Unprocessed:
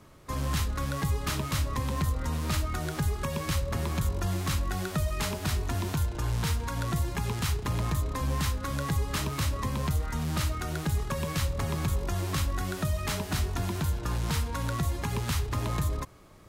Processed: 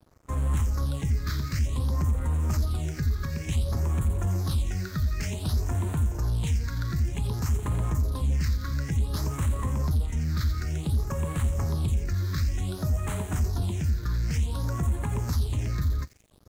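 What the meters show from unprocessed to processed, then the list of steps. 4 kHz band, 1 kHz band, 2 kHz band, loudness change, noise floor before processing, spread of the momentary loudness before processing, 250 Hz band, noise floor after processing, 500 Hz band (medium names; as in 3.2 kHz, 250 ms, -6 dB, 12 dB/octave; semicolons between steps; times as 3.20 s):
-5.0 dB, -5.5 dB, -5.0 dB, +2.5 dB, -38 dBFS, 2 LU, 0.0 dB, -38 dBFS, -3.0 dB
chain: peaking EQ 73 Hz +8 dB 0.96 oct; saturation -20 dBFS, distortion -15 dB; feedback echo behind a high-pass 86 ms, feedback 70%, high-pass 2.7 kHz, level -7 dB; phase shifter stages 6, 0.55 Hz, lowest notch 740–4900 Hz; crossover distortion -50.5 dBFS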